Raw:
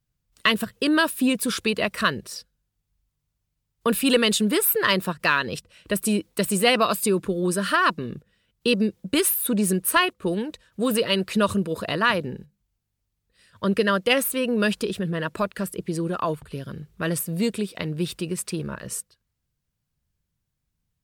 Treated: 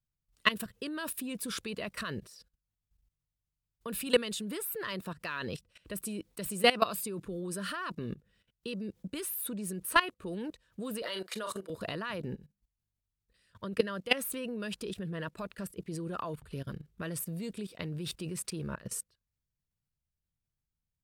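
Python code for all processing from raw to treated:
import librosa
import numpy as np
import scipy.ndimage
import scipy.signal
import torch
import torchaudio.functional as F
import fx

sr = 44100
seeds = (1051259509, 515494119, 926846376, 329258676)

y = fx.chain(x, sr, fx.highpass(hz=500.0, slope=12),
    fx.notch(hz=2600.0, q=6.4),
    fx.doubler(ms=37.0, db=-10.5), at=(11.02, 11.7))
y = fx.low_shelf(y, sr, hz=86.0, db=6.5)
y = fx.level_steps(y, sr, step_db=17)
y = y * 10.0 ** (-3.0 / 20.0)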